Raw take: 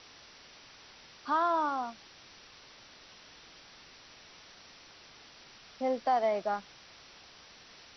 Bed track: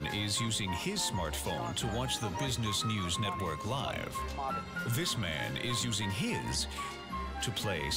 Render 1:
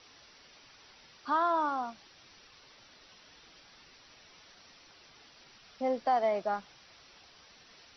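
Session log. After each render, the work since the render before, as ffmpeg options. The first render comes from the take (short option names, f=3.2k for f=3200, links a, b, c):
-af "afftdn=nr=6:nf=-55"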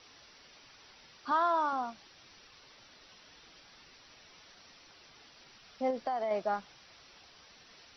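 -filter_complex "[0:a]asettb=1/sr,asplit=3[a][b][c];[a]atrim=end=1.314[d];[b]atrim=start=1.31:end=1.73,asetpts=PTS-STARTPTS,afade=t=in:d=0.004:c=qsin,afade=t=out:st=0.416:d=0.004:c=qsin,bass=f=250:g=-13,treble=f=4k:g=2[e];[c]atrim=start=1.726[f];[d][e]acrossfade=d=0.004:c1=hsin:c2=qsin[g];[g][f]acrossfade=d=0.004:c1=qsin:c2=hsin,asettb=1/sr,asplit=3[h][i][j];[h]atrim=end=5.904[k];[i]atrim=start=5.9:end=6.31,asetpts=PTS-STARTPTS,afade=t=in:d=0.004:c=qsin,afade=t=out:st=0.406:d=0.004:c=qsin,acompressor=threshold=-29dB:ratio=10:attack=3.2:release=140:knee=1:detection=peak[l];[j]atrim=start=6.306[m];[k][l]acrossfade=d=0.004:c1=hsin:c2=qsin[n];[n][m]acrossfade=d=0.004:c1=qsin:c2=hsin"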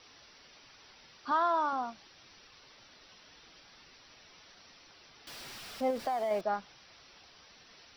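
-filter_complex "[0:a]asettb=1/sr,asplit=3[a][b][c];[a]atrim=end=5.274[d];[b]atrim=start=5.27:end=6.41,asetpts=PTS-STARTPTS,afade=t=in:d=0.004:c=qsin,afade=t=out:st=1.136:d=0.004:c=qsin,aeval=exprs='val(0)+0.5*0.00708*sgn(val(0))':c=same[e];[c]atrim=start=6.406[f];[d][e]acrossfade=d=0.004:c1=hsin:c2=qsin[g];[g][f]acrossfade=d=0.004:c1=qsin:c2=hsin"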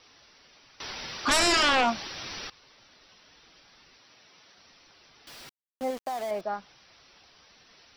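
-filter_complex "[0:a]asettb=1/sr,asplit=3[a][b][c];[a]atrim=end=0.804[d];[b]atrim=start=0.8:end=2.5,asetpts=PTS-STARTPTS,afade=t=in:d=0.004:c=qsin,afade=t=out:st=1.696:d=0.004:c=qsin,aeval=exprs='0.112*sin(PI/2*5.62*val(0)/0.112)':c=same[e];[c]atrim=start=2.496[f];[d][e]acrossfade=d=0.004:c1=hsin:c2=qsin[g];[g][f]acrossfade=d=0.004:c1=qsin:c2=hsin,asettb=1/sr,asplit=3[h][i][j];[h]atrim=end=3.984[k];[i]atrim=start=3.98:end=4.58,asetpts=PTS-STARTPTS,afade=t=in:d=0.004:c=qsin,afade=t=out:st=0.596:d=0.004:c=qsin,highpass=110[l];[j]atrim=start=4.576[m];[k][l]acrossfade=d=0.004:c1=hsin:c2=qsin[n];[n][m]acrossfade=d=0.004:c1=qsin:c2=hsin,asettb=1/sr,asplit=3[o][p][q];[o]atrim=end=5.494[r];[p]atrim=start=5.49:end=6.31,asetpts=PTS-STARTPTS,afade=t=in:d=0.004:c=qsin,afade=t=out:st=0.816:d=0.004:c=qsin,aeval=exprs='val(0)*gte(abs(val(0)),0.015)':c=same[s];[q]atrim=start=6.306[t];[r][s]acrossfade=d=0.004:c1=hsin:c2=qsin[u];[u][t]acrossfade=d=0.004:c1=qsin:c2=hsin"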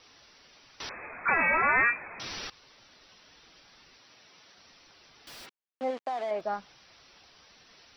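-filter_complex "[0:a]asettb=1/sr,asplit=3[a][b][c];[a]atrim=end=0.894[d];[b]atrim=start=0.89:end=2.2,asetpts=PTS-STARTPTS,afade=t=in:d=0.004:c=qsin,afade=t=out:st=1.306:d=0.004:c=qsin,lowpass=f=2.2k:t=q:w=0.5098,lowpass=f=2.2k:t=q:w=0.6013,lowpass=f=2.2k:t=q:w=0.9,lowpass=f=2.2k:t=q:w=2.563,afreqshift=-2600[e];[c]atrim=start=2.196[f];[d][e]acrossfade=d=0.004:c1=hsin:c2=qsin[g];[g][f]acrossfade=d=0.004:c1=qsin:c2=hsin,asplit=3[h][i][j];[h]afade=t=out:st=5.45:d=0.02[k];[i]highpass=250,lowpass=3.6k,afade=t=in:st=5.45:d=0.02,afade=t=out:st=6.4:d=0.02[l];[j]afade=t=in:st=6.4:d=0.02[m];[k][l][m]amix=inputs=3:normalize=0"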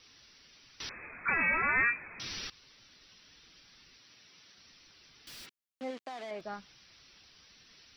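-af "equalizer=f=730:w=0.73:g=-11"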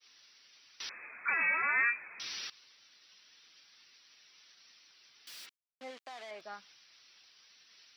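-af "agate=range=-33dB:threshold=-57dB:ratio=3:detection=peak,highpass=f=1.1k:p=1"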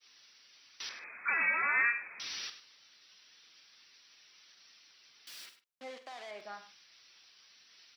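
-filter_complex "[0:a]asplit=2[a][b];[b]adelay=48,volume=-11.5dB[c];[a][c]amix=inputs=2:normalize=0,aecho=1:1:100:0.224"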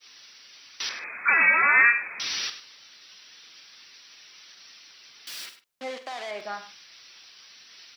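-af "volume=11dB"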